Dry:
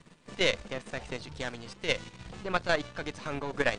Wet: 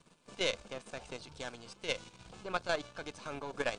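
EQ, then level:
low-shelf EQ 430 Hz −11 dB
parametric band 2,500 Hz −5.5 dB 3 octaves
notch filter 1,900 Hz, Q 5.5
0.0 dB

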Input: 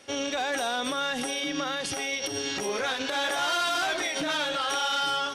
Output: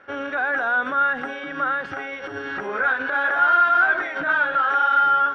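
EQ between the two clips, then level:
low-pass with resonance 1,500 Hz, resonance Q 5.6
mains-hum notches 60/120/180/240/300 Hz
0.0 dB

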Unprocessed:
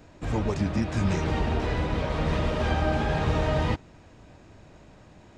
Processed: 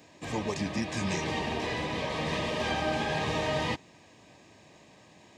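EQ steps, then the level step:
high-pass filter 140 Hz 12 dB per octave
Butterworth band-reject 1,400 Hz, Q 4.4
tilt shelving filter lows −4.5 dB, about 1,300 Hz
0.0 dB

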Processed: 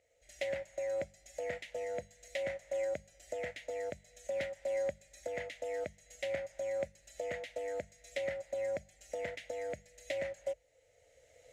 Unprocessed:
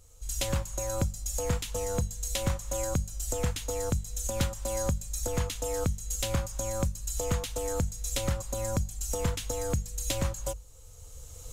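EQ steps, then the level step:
pair of resonant band-passes 1,100 Hz, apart 1.7 octaves
+5.5 dB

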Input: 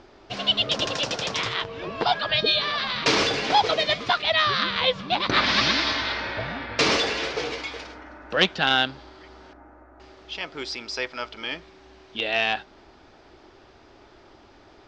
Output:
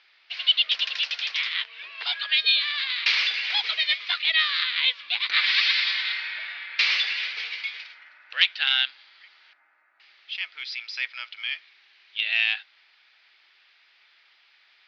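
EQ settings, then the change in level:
Chebyshev band-pass filter 2,100–4,600 Hz, order 2
high-frequency loss of the air 140 metres
+5.5 dB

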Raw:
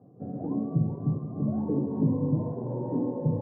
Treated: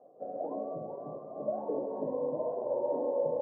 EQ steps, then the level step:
high-pass with resonance 590 Hz, resonance Q 4.9
high-frequency loss of the air 370 metres
−1.5 dB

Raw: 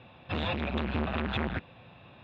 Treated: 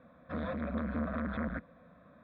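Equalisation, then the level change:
high-frequency loss of the air 410 metres
phaser with its sweep stopped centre 560 Hz, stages 8
0.0 dB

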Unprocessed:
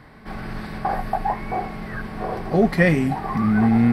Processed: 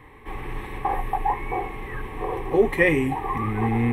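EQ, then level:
phaser with its sweep stopped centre 970 Hz, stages 8
+2.5 dB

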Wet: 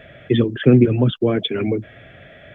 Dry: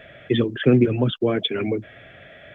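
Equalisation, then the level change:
low-shelf EQ 350 Hz +6 dB
0.0 dB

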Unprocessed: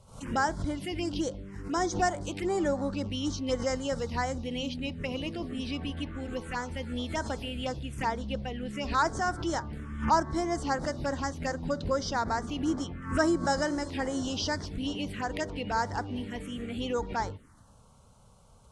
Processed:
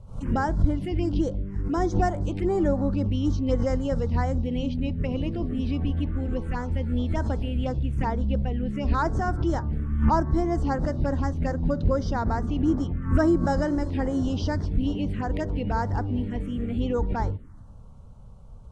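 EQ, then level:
spectral tilt −3.5 dB per octave
0.0 dB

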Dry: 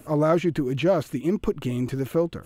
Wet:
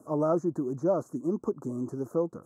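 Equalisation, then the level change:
high-pass filter 190 Hz 12 dB per octave
Chebyshev band-stop filter 1,200–6,200 Hz, order 3
high-frequency loss of the air 50 metres
−4.0 dB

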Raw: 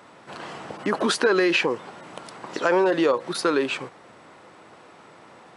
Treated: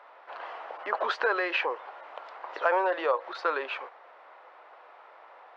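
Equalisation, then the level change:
high-pass filter 600 Hz 24 dB per octave
high-frequency loss of the air 140 metres
head-to-tape spacing loss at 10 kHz 27 dB
+2.5 dB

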